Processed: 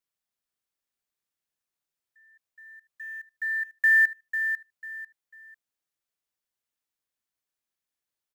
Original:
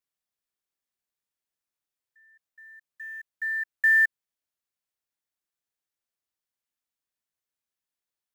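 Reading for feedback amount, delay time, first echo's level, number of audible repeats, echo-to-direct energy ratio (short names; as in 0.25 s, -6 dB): 28%, 0.496 s, -8.5 dB, 3, -8.0 dB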